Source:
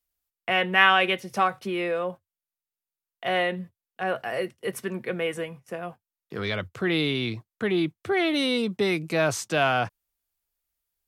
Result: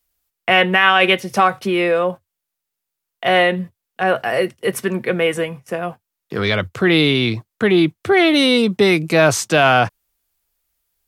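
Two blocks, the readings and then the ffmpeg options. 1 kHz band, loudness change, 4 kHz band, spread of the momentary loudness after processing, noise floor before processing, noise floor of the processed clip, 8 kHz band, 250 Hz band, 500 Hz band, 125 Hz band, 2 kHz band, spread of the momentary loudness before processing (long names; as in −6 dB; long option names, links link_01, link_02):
+8.5 dB, +9.0 dB, +9.5 dB, 12 LU, below −85 dBFS, −81 dBFS, +10.5 dB, +10.5 dB, +10.5 dB, +10.5 dB, +8.5 dB, 13 LU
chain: -af "alimiter=level_in=11.5dB:limit=-1dB:release=50:level=0:latency=1,volume=-1dB"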